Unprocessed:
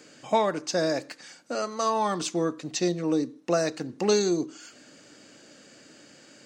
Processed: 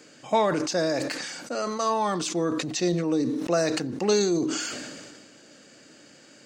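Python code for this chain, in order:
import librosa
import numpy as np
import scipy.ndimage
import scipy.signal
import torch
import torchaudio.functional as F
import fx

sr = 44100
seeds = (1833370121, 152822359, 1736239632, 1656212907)

y = fx.sustainer(x, sr, db_per_s=31.0)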